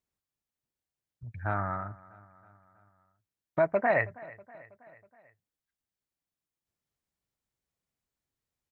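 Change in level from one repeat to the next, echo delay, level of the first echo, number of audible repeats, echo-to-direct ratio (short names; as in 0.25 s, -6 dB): -5.0 dB, 0.322 s, -21.0 dB, 3, -19.5 dB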